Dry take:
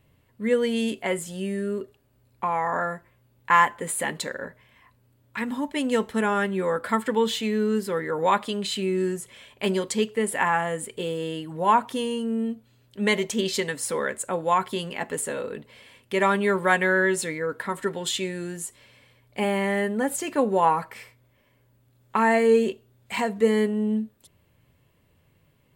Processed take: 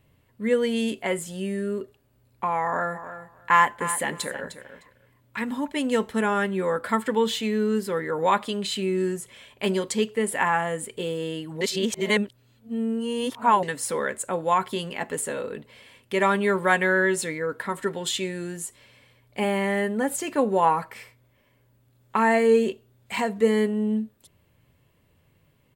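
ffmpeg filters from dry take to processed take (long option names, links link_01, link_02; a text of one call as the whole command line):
ffmpeg -i in.wav -filter_complex "[0:a]asplit=3[link_01][link_02][link_03];[link_01]afade=type=out:start_time=2.94:duration=0.02[link_04];[link_02]aecho=1:1:305|610:0.251|0.0377,afade=type=in:start_time=2.94:duration=0.02,afade=type=out:start_time=5.66:duration=0.02[link_05];[link_03]afade=type=in:start_time=5.66:duration=0.02[link_06];[link_04][link_05][link_06]amix=inputs=3:normalize=0,asplit=3[link_07][link_08][link_09];[link_07]atrim=end=11.612[link_10];[link_08]atrim=start=11.608:end=13.632,asetpts=PTS-STARTPTS,areverse[link_11];[link_09]atrim=start=13.628[link_12];[link_10][link_11]acrossfade=duration=0.004:curve1=hsin:curve2=hsin[link_13];[link_13][link_12]acrossfade=duration=0.004:curve1=hsin:curve2=hsin" out.wav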